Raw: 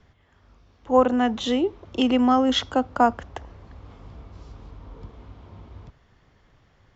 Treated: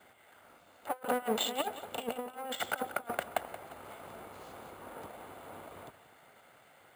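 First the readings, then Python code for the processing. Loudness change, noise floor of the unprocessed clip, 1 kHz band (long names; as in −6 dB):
−16.5 dB, −61 dBFS, −12.5 dB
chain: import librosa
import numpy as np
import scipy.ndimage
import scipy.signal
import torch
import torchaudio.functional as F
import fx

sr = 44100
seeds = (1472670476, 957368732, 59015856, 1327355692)

y = fx.lower_of_two(x, sr, delay_ms=1.4)
y = scipy.signal.sosfilt(scipy.signal.butter(2, 370.0, 'highpass', fs=sr, output='sos'), y)
y = fx.over_compress(y, sr, threshold_db=-33.0, ratio=-0.5)
y = fx.air_absorb(y, sr, metres=120.0)
y = fx.echo_feedback(y, sr, ms=177, feedback_pct=40, wet_db=-14.5)
y = np.repeat(scipy.signal.resample_poly(y, 1, 4), 4)[:len(y)]
y = y * 10.0 ** (-1.0 / 20.0)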